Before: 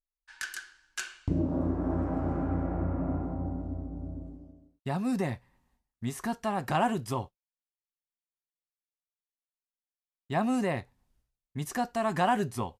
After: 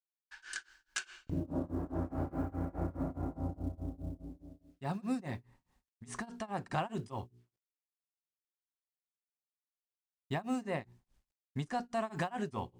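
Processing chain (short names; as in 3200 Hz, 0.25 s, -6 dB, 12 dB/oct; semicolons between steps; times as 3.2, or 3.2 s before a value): steep low-pass 9600 Hz 72 dB/oct; notches 60/120/180/240/300/360/420 Hz; compressor 4:1, threshold -31 dBFS, peak gain reduction 8.5 dB; companded quantiser 8-bit; grains 0.236 s, grains 4.8/s, spray 54 ms, pitch spread up and down by 0 st; gain +1 dB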